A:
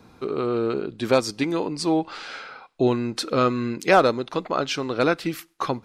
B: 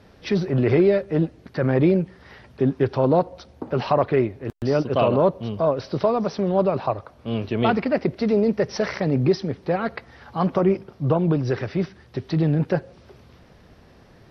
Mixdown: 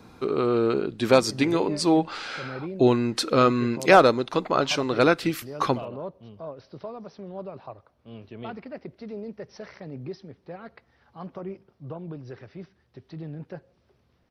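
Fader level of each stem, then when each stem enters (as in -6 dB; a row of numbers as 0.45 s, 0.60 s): +1.5 dB, -17.0 dB; 0.00 s, 0.80 s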